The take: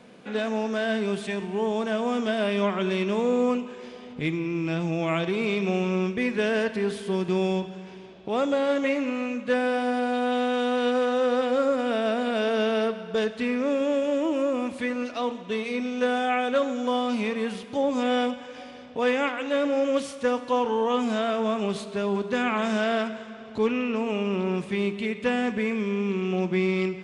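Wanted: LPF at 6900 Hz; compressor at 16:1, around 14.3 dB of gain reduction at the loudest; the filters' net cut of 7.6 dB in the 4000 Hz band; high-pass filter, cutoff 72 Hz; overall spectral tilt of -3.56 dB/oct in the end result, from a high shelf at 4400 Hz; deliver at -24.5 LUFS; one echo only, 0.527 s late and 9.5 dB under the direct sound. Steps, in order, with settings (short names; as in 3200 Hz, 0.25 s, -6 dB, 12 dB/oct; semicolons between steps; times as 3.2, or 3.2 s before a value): HPF 72 Hz; LPF 6900 Hz; bell 4000 Hz -8 dB; high shelf 4400 Hz -5 dB; compressor 16:1, threshold -34 dBFS; echo 0.527 s -9.5 dB; gain +13.5 dB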